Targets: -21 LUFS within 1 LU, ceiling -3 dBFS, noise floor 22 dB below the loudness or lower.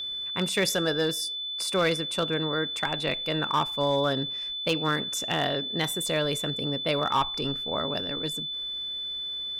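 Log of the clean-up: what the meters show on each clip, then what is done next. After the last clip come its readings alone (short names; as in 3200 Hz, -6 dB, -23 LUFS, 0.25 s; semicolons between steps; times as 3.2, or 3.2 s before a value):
clipped 0.3%; flat tops at -17.0 dBFS; steady tone 3500 Hz; tone level -31 dBFS; loudness -27.0 LUFS; peak -17.0 dBFS; loudness target -21.0 LUFS
-> clip repair -17 dBFS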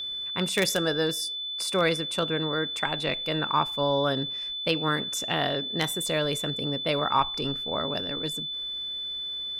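clipped 0.0%; steady tone 3500 Hz; tone level -31 dBFS
-> notch 3500 Hz, Q 30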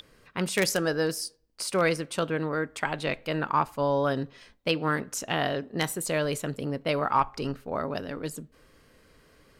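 steady tone none; loudness -29.0 LUFS; peak -7.5 dBFS; loudness target -21.0 LUFS
-> gain +8 dB; limiter -3 dBFS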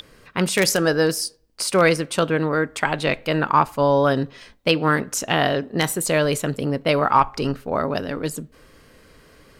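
loudness -21.0 LUFS; peak -3.0 dBFS; noise floor -52 dBFS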